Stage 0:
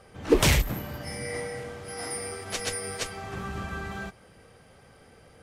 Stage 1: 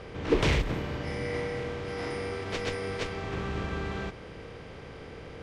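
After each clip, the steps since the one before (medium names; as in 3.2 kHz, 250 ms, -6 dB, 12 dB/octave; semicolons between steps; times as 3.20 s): spectral levelling over time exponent 0.6; low-pass 3.8 kHz 12 dB/octave; trim -5.5 dB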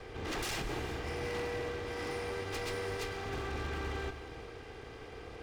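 comb filter that takes the minimum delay 2.5 ms; wavefolder -29.5 dBFS; gated-style reverb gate 480 ms flat, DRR 10.5 dB; trim -2.5 dB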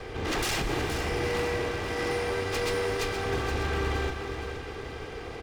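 feedback delay 471 ms, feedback 46%, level -9 dB; trim +8 dB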